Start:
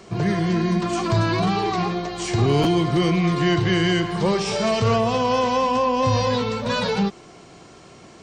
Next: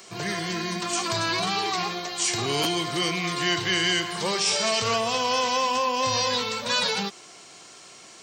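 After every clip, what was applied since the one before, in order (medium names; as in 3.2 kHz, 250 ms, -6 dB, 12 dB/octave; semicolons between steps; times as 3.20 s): tilt EQ +4 dB/octave; trim -3 dB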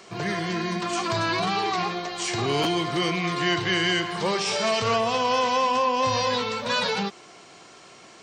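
low-pass 2.2 kHz 6 dB/octave; trim +3 dB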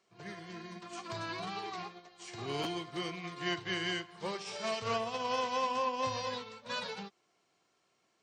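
upward expansion 2.5:1, over -33 dBFS; trim -8.5 dB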